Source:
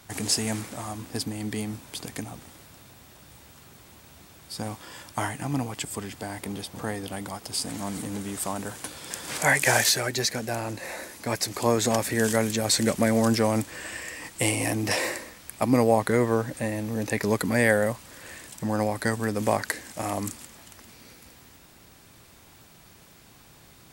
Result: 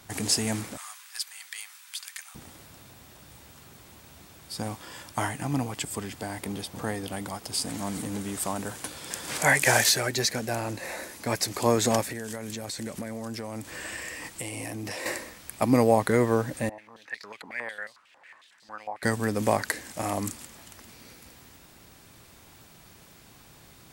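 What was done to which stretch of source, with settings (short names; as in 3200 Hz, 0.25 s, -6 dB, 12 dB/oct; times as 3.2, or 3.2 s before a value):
0.77–2.35 HPF 1300 Hz 24 dB/oct
12.01–15.06 compressor 12:1, threshold -31 dBFS
16.69–19.03 stepped band-pass 11 Hz 820–4400 Hz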